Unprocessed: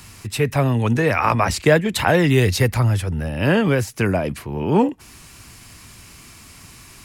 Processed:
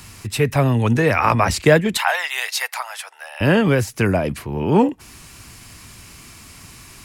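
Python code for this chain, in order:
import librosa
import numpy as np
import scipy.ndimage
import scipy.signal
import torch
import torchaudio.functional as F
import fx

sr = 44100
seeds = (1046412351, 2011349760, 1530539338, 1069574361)

y = fx.steep_highpass(x, sr, hz=730.0, slope=36, at=(1.97, 3.41))
y = F.gain(torch.from_numpy(y), 1.5).numpy()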